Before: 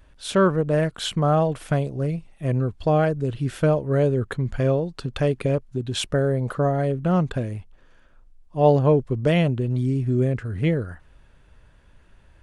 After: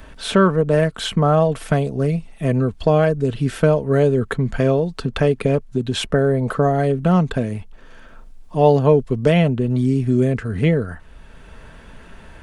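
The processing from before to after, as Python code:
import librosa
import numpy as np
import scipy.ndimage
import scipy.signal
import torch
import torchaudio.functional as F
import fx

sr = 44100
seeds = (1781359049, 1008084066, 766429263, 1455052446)

y = x + 0.33 * np.pad(x, (int(4.5 * sr / 1000.0), 0))[:len(x)]
y = fx.band_squash(y, sr, depth_pct=40)
y = y * librosa.db_to_amplitude(4.5)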